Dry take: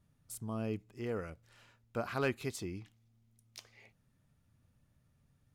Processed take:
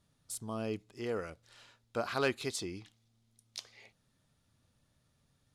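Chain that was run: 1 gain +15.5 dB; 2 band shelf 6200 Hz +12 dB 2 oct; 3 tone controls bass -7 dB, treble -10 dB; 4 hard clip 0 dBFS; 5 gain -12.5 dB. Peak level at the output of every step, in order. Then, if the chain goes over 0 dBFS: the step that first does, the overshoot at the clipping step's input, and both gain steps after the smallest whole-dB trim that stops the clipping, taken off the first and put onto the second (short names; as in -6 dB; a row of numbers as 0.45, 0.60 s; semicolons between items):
-8.0, -3.5, -5.0, -5.0, -17.5 dBFS; no overload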